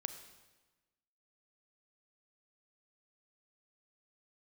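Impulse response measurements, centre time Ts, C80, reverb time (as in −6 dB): 16 ms, 11.0 dB, 1.2 s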